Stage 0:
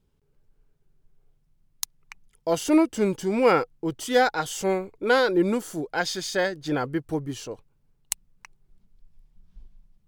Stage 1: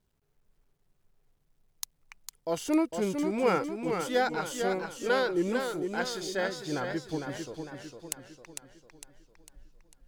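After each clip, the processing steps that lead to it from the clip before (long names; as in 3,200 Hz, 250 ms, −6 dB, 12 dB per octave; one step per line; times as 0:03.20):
bit reduction 12 bits
feedback echo with a swinging delay time 452 ms, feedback 48%, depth 101 cents, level −6 dB
level −7 dB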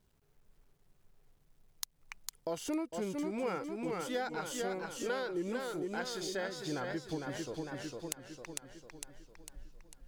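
downward compressor 3 to 1, threshold −41 dBFS, peak gain reduction 15 dB
level +3.5 dB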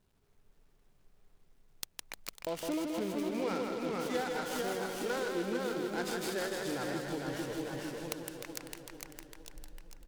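mains-hum notches 50/100/150 Hz
bouncing-ball delay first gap 160 ms, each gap 0.9×, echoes 5
short delay modulated by noise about 2,800 Hz, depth 0.034 ms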